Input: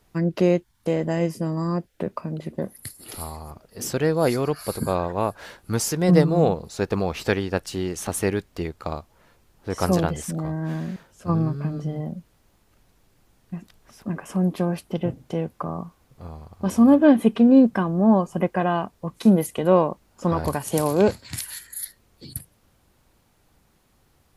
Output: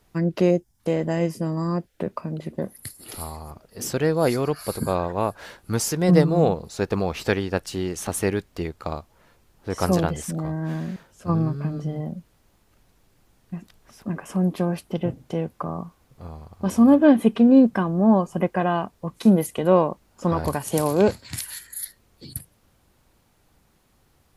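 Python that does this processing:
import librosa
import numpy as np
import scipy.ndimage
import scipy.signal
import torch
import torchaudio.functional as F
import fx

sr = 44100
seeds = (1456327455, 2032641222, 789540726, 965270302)

y = fx.spec_box(x, sr, start_s=0.5, length_s=0.3, low_hz=860.0, high_hz=4800.0, gain_db=-11)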